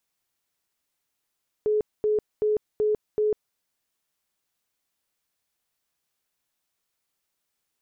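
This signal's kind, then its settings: tone bursts 425 Hz, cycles 63, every 0.38 s, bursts 5, -19.5 dBFS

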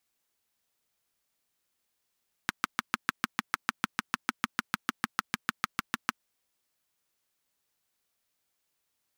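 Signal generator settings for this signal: single-cylinder engine model, steady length 3.73 s, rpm 800, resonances 230/1300 Hz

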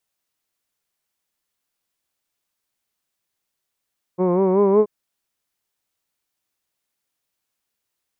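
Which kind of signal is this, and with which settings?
formant-synthesis vowel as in hood, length 0.68 s, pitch 176 Hz, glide +3 st, vibrato depth 0.7 st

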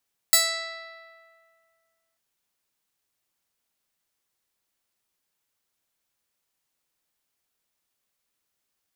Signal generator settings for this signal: plucked string E5, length 1.84 s, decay 2.11 s, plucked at 0.22, bright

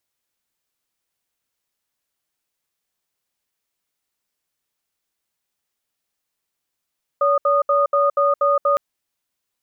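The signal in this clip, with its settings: cadence 569 Hz, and 1.23 kHz, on 0.17 s, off 0.07 s, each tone -16.5 dBFS 1.56 s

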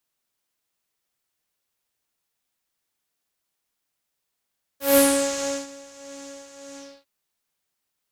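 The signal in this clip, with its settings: synth patch with tremolo C#5, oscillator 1 triangle, interval -12 st, detune 11 cents, oscillator 2 level -2 dB, noise -6 dB, filter lowpass, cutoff 3.9 kHz, Q 3.7, filter envelope 2 oct, filter decay 0.49 s, attack 161 ms, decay 0.70 s, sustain -24 dB, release 0.29 s, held 1.96 s, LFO 1.6 Hz, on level 5 dB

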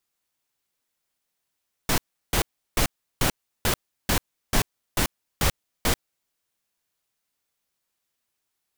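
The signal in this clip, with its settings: noise bursts pink, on 0.09 s, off 0.35 s, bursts 10, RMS -21 dBFS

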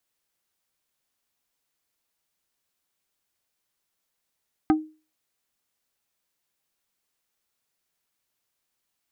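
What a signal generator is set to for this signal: wood hit plate, lowest mode 311 Hz, decay 0.33 s, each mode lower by 5.5 dB, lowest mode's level -13 dB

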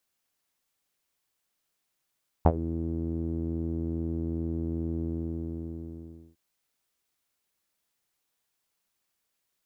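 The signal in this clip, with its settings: synth note saw E2 12 dB/octave, low-pass 320 Hz, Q 3.8, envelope 1.5 oct, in 0.13 s, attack 5.6 ms, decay 0.06 s, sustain -17 dB, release 1.34 s, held 2.57 s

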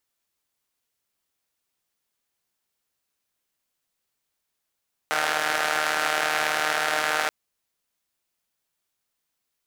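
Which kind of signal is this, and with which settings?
four-cylinder engine model, steady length 2.18 s, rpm 4600, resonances 750/1400 Hz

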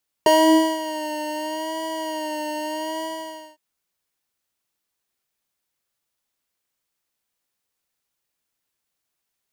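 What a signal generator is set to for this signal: synth patch with vibrato D#5, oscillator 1 square, oscillator 2 square, interval +7 st, detune 25 cents, oscillator 2 level 0 dB, sub -7 dB, noise -17.5 dB, filter highpass, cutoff 150 Hz, Q 7.6, filter envelope 1.5 oct, filter decay 0.58 s, filter sustain 40%, attack 2.3 ms, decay 0.52 s, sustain -13 dB, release 0.56 s, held 2.75 s, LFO 0.79 Hz, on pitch 48 cents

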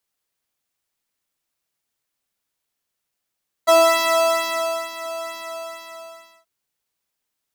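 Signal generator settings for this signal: synth patch with pulse-width modulation E5, oscillator 2 sine, interval +7 st, detune 5 cents, sub -29.5 dB, noise -21 dB, filter highpass, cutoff 190 Hz, Q 6.4, filter envelope 1 oct, attack 20 ms, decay 1.21 s, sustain -15.5 dB, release 1.16 s, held 1.62 s, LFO 2.2 Hz, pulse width 22%, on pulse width 15%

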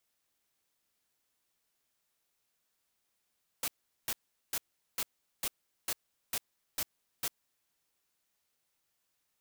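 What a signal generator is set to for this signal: noise bursts white, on 0.05 s, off 0.40 s, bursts 9, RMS -33.5 dBFS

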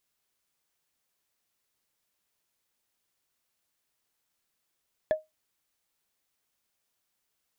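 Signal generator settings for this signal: wood hit, lowest mode 624 Hz, decay 0.18 s, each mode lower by 12 dB, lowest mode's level -17.5 dB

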